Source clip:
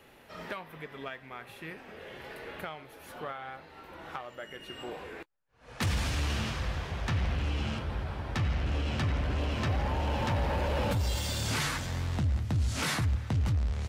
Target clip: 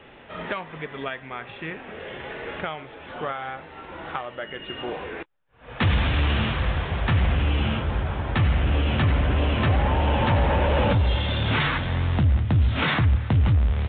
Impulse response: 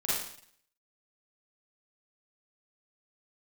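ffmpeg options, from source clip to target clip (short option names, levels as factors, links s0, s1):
-af "aresample=8000,aresample=44100,acontrast=55,volume=1.41"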